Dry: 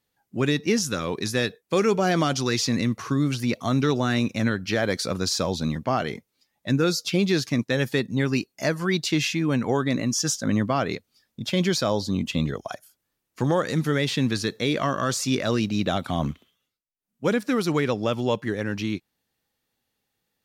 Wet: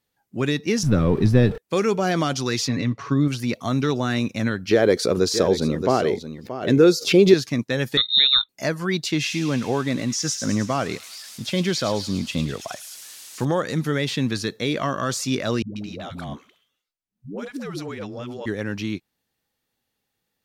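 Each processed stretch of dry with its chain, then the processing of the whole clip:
0.83–1.58 zero-crossing step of -32.5 dBFS + tilt -4.5 dB/oct + notch 6700 Hz, Q 9.5
2.68–3.28 air absorption 120 m + comb 7.1 ms, depth 52%
4.71–7.34 bell 410 Hz +13.5 dB 0.85 oct + echo 0.627 s -12 dB + backwards sustainer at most 140 dB/s
7.97–8.49 low shelf 370 Hz +8.5 dB + inverted band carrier 3900 Hz
9.2–13.45 switching spikes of -27.5 dBFS + LPF 7300 Hz + thin delay 0.106 s, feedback 66%, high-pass 2800 Hz, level -8 dB
15.62–18.46 high shelf 11000 Hz -6 dB + compressor 5:1, threshold -28 dBFS + dispersion highs, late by 0.14 s, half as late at 310 Hz
whole clip: dry

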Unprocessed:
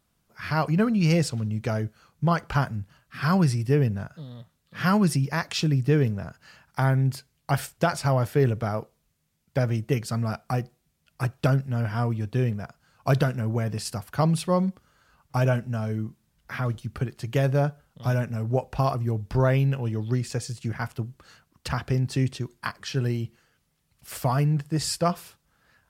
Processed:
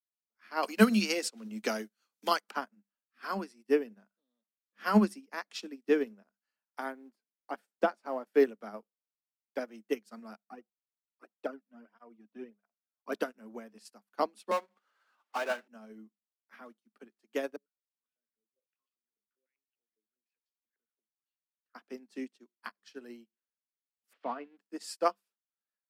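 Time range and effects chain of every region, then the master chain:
0.63–2.51 high shelf 2200 Hz +10 dB + three-band squash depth 70%
6.92–8.27 G.711 law mismatch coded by mu + high shelf 2100 Hz -10.5 dB
10.43–13.12 bell 11000 Hz -11 dB 2.4 oct + tape flanging out of phase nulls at 1.6 Hz, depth 2.7 ms
14.51–15.68 BPF 700–3500 Hz + power-law curve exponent 0.5
17.56–21.75 Butterworth band-stop 790 Hz, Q 0.79 + compressor 3:1, threshold -38 dBFS + stepped band-pass 10 Hz 420–3100 Hz
24.13–24.57 switching spikes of -25 dBFS + LPF 3100 Hz 24 dB/oct + upward compressor, threshold -35 dBFS
whole clip: Chebyshev high-pass 200 Hz, order 10; upward expander 2.5:1, over -46 dBFS; gain +3 dB

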